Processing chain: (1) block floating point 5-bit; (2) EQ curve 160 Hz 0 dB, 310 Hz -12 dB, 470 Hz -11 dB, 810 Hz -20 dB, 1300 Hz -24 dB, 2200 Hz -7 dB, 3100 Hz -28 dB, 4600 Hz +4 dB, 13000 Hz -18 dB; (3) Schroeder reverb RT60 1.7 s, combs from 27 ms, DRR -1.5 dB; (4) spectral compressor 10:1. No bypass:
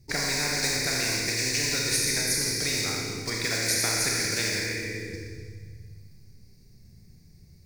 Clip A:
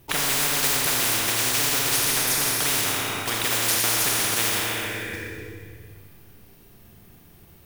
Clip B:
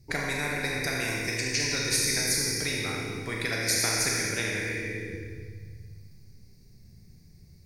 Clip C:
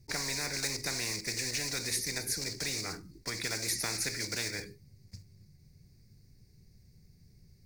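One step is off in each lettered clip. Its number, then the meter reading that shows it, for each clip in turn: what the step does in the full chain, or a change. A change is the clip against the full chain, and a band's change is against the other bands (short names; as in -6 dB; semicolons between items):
2, momentary loudness spread change -3 LU; 1, distortion -24 dB; 3, momentary loudness spread change -4 LU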